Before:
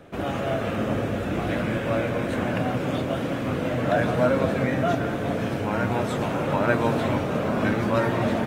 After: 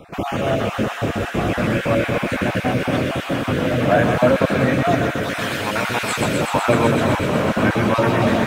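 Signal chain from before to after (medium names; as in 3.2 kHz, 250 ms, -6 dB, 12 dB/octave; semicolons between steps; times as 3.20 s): random holes in the spectrogram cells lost 26%; 5.23–6.21 s: tilt shelf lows -8 dB, about 940 Hz; on a send: feedback echo behind a high-pass 125 ms, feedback 84%, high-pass 1.6 kHz, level -4 dB; on the sum: trim +6.5 dB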